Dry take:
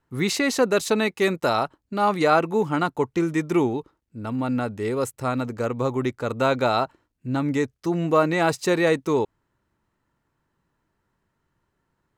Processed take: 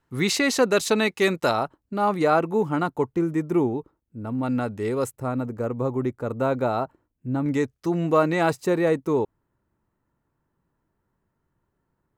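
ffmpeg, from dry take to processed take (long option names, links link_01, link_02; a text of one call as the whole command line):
ffmpeg -i in.wav -af "asetnsamples=nb_out_samples=441:pad=0,asendcmd='1.51 equalizer g -7;3.12 equalizer g -13.5;4.43 equalizer g -3;5.16 equalizer g -14.5;7.46 equalizer g -3;8.53 equalizer g -10.5',equalizer=frequency=4200:width_type=o:width=2.8:gain=2" out.wav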